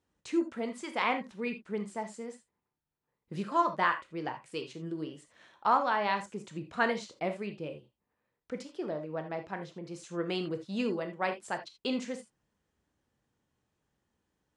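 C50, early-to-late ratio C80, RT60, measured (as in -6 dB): 11.0 dB, 17.5 dB, not exponential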